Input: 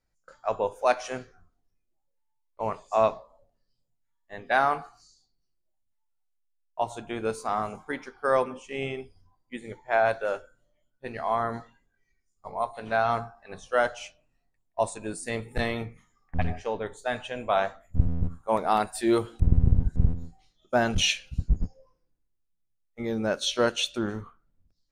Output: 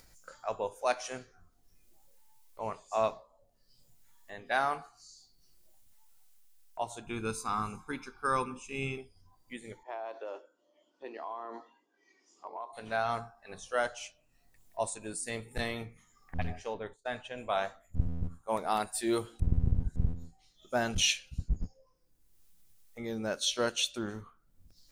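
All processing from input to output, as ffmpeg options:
ffmpeg -i in.wav -filter_complex "[0:a]asettb=1/sr,asplit=3[link_01][link_02][link_03];[link_01]atrim=end=7.064[link_04];[link_02]atrim=start=7.06:end=8.98,asetpts=PTS-STARTPTS,afade=type=in:duration=0.004:curve=qsin,afade=type=out:start_time=1.916:duration=0.004:curve=qsin,lowshelf=frequency=160:gain=5,aecho=1:1:0.8:0.82,atrim=end_sample=84672[link_05];[link_03]atrim=start=8.976[link_06];[link_04][link_05]acrossfade=duration=0.004:curve1=hsin:curve2=qsin[link_07];[link_07][link_06]acrossfade=duration=0.004:curve1=qsin:curve2=hsin,asettb=1/sr,asplit=3[link_08][link_09][link_10];[link_08]atrim=end=9.834[link_11];[link_09]atrim=start=9.83:end=12.73,asetpts=PTS-STARTPTS,afade=type=in:duration=0.004:curve=qsin,afade=type=out:start_time=2.896:duration=0.004:curve=qsin,highpass=frequency=290:width=0.5412,highpass=frequency=290:width=1.3066,equalizer=frequency=320:width_type=q:width=4:gain=9,equalizer=frequency=1000:width_type=q:width=4:gain=7,equalizer=frequency=1500:width_type=q:width=4:gain=-10,equalizer=frequency=2200:width_type=q:width=4:gain=-7,equalizer=frequency=4000:width_type=q:width=4:gain=-8,lowpass=frequency=5000:width=0.5412,lowpass=frequency=5000:width=1.3066,acompressor=threshold=-29dB:ratio=6:attack=3.2:release=140:knee=1:detection=peak[link_12];[link_10]atrim=start=12.726[link_13];[link_11][link_12]acrossfade=duration=0.004:curve1=hsin:curve2=qsin[link_14];[link_14][link_13]acrossfade=duration=0.004:curve1=qsin:curve2=hsin,asettb=1/sr,asplit=3[link_15][link_16][link_17];[link_15]atrim=end=16.744[link_18];[link_16]atrim=start=16.74:end=17.38,asetpts=PTS-STARTPTS,afade=type=in:duration=0.004:curve=qsin,afade=type=out:start_time=0.636:duration=0.004:curve=qsin,lowpass=frequency=3300:poles=1,agate=range=-33dB:threshold=-41dB:ratio=3:release=100:detection=peak[link_19];[link_17]atrim=start=17.376[link_20];[link_18][link_19]acrossfade=duration=0.004:curve1=hsin:curve2=qsin[link_21];[link_21][link_20]acrossfade=duration=0.004:curve1=qsin:curve2=hsin,highshelf=frequency=4000:gain=10.5,acompressor=mode=upward:threshold=-33dB:ratio=2.5,volume=-7.5dB" out.wav

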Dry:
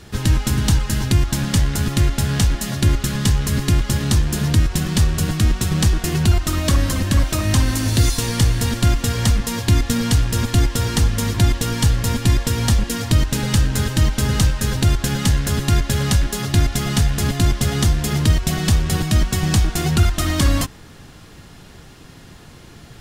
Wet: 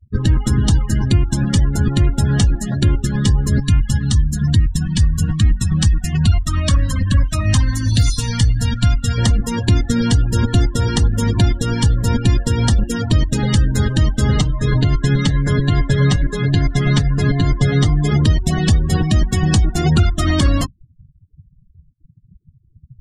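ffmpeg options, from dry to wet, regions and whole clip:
ffmpeg -i in.wav -filter_complex "[0:a]asettb=1/sr,asplit=3[link_01][link_02][link_03];[link_01]atrim=end=3.604[link_04];[link_02]atrim=start=3.6:end=9.18,asetpts=PTS-STARTPTS,afade=type=in:duration=0.004:curve=qsin,afade=type=out:start_time=5.576:duration=0.004:curve=qsin,equalizer=frequency=380:width=0.72:gain=-7.5,bandreject=frequency=360:width=5[link_05];[link_03]atrim=start=9.176[link_06];[link_04][link_05]acrossfade=duration=0.004:curve1=hsin:curve2=qsin[link_07];[link_07][link_06]acrossfade=duration=0.004:curve1=qsin:curve2=hsin,asettb=1/sr,asplit=3[link_08][link_09][link_10];[link_08]atrim=end=14.374[link_11];[link_09]atrim=start=14.37:end=18.11,asetpts=PTS-STARTPTS,afade=type=in:duration=0.004:curve=qsin,afade=type=out:start_time=3.736:duration=0.004:curve=qsin,highshelf=frequency=6400:gain=-8,aecho=1:1:6.7:0.73,atrim=end_sample=164934[link_12];[link_10]atrim=start=18.106[link_13];[link_11][link_12]acrossfade=duration=0.004:curve1=hsin:curve2=qsin[link_14];[link_14][link_13]acrossfade=duration=0.004:curve1=qsin:curve2=hsin,afftfilt=real='re*gte(hypot(re,im),0.0316)':imag='im*gte(hypot(re,im),0.0316)':win_size=1024:overlap=0.75,afftdn=noise_reduction=30:noise_floor=-26,alimiter=limit=-10.5dB:level=0:latency=1:release=335,volume=5.5dB" out.wav

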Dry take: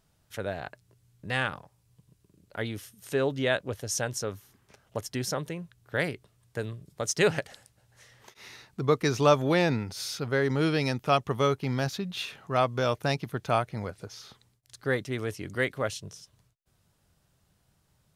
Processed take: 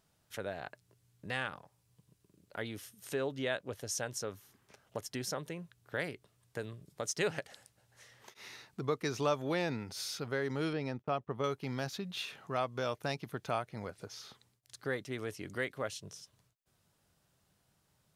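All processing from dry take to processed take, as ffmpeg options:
ffmpeg -i in.wav -filter_complex "[0:a]asettb=1/sr,asplit=3[link_01][link_02][link_03];[link_01]atrim=end=10.734[link_04];[link_02]atrim=start=10.73:end=11.44,asetpts=PTS-STARTPTS,afade=type=in:duration=0.004:curve=qsin,afade=type=out:start_time=0.706:duration=0.004:curve=qsin,lowpass=frequency=1200:poles=1,agate=range=-28dB:threshold=-45dB:ratio=16:release=100:detection=peak[link_05];[link_03]atrim=start=11.436[link_06];[link_04][link_05]acrossfade=duration=0.004:curve1=hsin:curve2=qsin[link_07];[link_07][link_06]acrossfade=duration=0.004:curve1=qsin:curve2=hsin,lowshelf=frequency=98:gain=-10.5,acompressor=threshold=-38dB:ratio=1.5,volume=-2.5dB" out.wav

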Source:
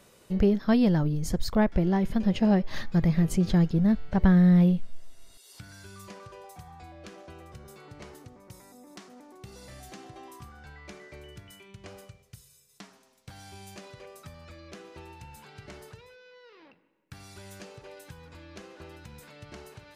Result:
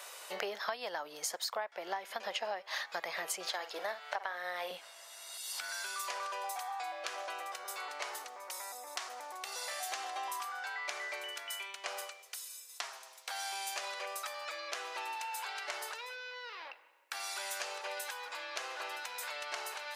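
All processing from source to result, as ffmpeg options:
ffmpeg -i in.wav -filter_complex "[0:a]asettb=1/sr,asplit=3[link_01][link_02][link_03];[link_01]atrim=end=3.474[link_04];[link_02]atrim=start=3.47:end=4.71,asetpts=PTS-STARTPTS,afade=type=in:duration=0.004:curve=qsin,afade=type=out:start_time=1.236:duration=0.004:curve=qsin,highpass=380,asplit=2[link_05][link_06];[link_06]adelay=50,volume=-12dB[link_07];[link_05][link_07]amix=inputs=2:normalize=0,atrim=end_sample=54684[link_08];[link_03]atrim=start=4.706[link_09];[link_04][link_08]acrossfade=duration=0.004:curve1=hsin:curve2=qsin[link_10];[link_10][link_09]acrossfade=duration=0.004:curve1=qsin:curve2=hsin,highpass=frequency=680:width=0.5412,highpass=frequency=680:width=1.3066,acompressor=threshold=-46dB:ratio=16,volume=12dB" out.wav

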